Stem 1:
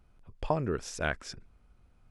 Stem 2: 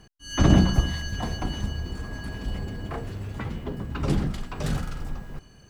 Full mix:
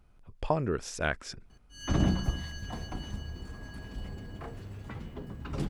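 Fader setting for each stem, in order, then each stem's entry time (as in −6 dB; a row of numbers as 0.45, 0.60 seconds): +1.0, −9.0 decibels; 0.00, 1.50 seconds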